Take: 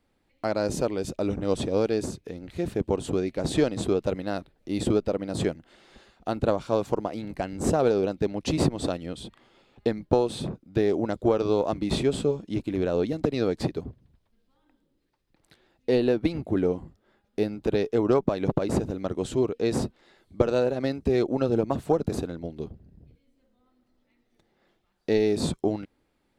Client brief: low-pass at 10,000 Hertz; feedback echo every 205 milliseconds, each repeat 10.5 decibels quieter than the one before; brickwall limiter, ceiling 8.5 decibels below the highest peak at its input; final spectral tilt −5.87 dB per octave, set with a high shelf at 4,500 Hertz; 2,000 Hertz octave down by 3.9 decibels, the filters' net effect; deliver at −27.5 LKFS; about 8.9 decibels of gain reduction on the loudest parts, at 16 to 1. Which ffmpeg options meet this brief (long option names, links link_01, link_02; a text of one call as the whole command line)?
ffmpeg -i in.wav -af "lowpass=10000,equalizer=frequency=2000:width_type=o:gain=-6,highshelf=frequency=4500:gain=4,acompressor=threshold=-27dB:ratio=16,alimiter=limit=-22.5dB:level=0:latency=1,aecho=1:1:205|410|615:0.299|0.0896|0.0269,volume=7.5dB" out.wav